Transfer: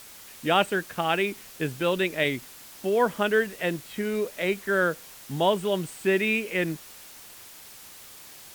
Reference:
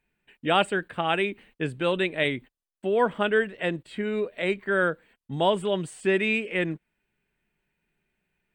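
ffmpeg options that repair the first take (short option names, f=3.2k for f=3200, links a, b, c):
-af "afwtdn=0.005"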